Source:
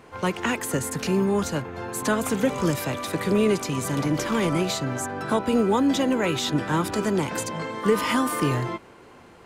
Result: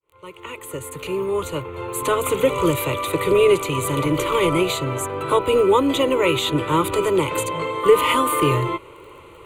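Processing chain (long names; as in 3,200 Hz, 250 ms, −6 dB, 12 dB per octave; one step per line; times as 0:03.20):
fade in at the beginning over 2.42 s
surface crackle 19 per second −44 dBFS
phaser with its sweep stopped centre 1,100 Hz, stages 8
level +8.5 dB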